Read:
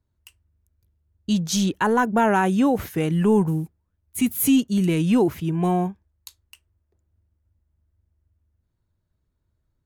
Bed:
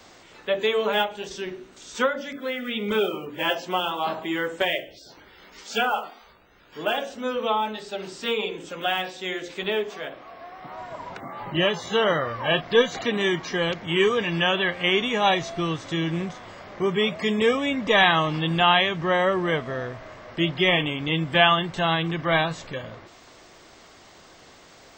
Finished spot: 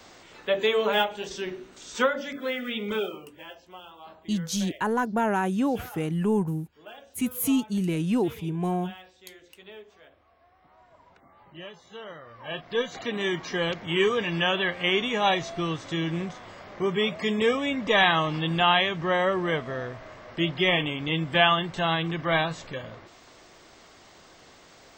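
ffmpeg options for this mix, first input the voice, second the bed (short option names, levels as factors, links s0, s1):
-filter_complex "[0:a]adelay=3000,volume=0.501[s0];[1:a]volume=7.08,afade=t=out:st=2.52:d=0.94:silence=0.105925,afade=t=in:st=12.23:d=1.34:silence=0.133352[s1];[s0][s1]amix=inputs=2:normalize=0"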